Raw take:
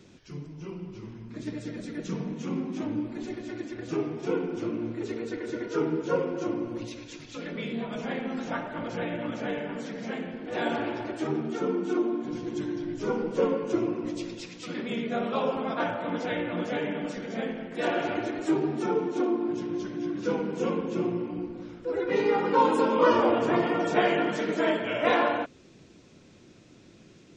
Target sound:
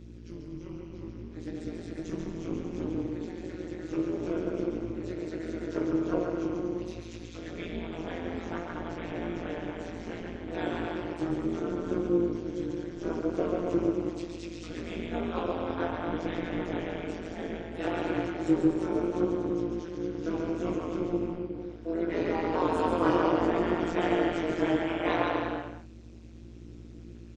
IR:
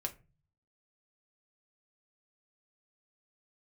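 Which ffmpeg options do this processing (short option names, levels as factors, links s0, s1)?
-af "aecho=1:1:140|238|306.6|354.6|388.2:0.631|0.398|0.251|0.158|0.1,aeval=exprs='val(0)+0.00891*(sin(2*PI*60*n/s)+sin(2*PI*2*60*n/s)/2+sin(2*PI*3*60*n/s)/3+sin(2*PI*4*60*n/s)/4+sin(2*PI*5*60*n/s)/5)':c=same,flanger=delay=16:depth=3.5:speed=0.67,tremolo=f=170:d=0.974,equalizer=f=330:w=7.9:g=11"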